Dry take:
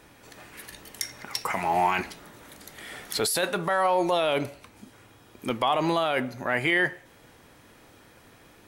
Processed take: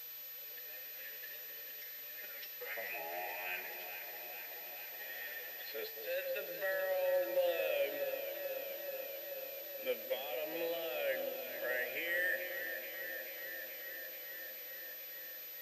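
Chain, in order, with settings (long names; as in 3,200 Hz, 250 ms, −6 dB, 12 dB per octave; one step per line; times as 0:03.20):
spectral tilt +3 dB per octave
hum removal 89.73 Hz, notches 11
downward compressor 16 to 1, threshold −25 dBFS, peak gain reduction 11.5 dB
phase-vocoder stretch with locked phases 1.8×
formant filter e
on a send: delay that swaps between a low-pass and a high-pass 216 ms, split 960 Hz, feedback 88%, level −7.5 dB
on the sum: background noise blue −54 dBFS
switching amplifier with a slow clock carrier 12,000 Hz
level +2 dB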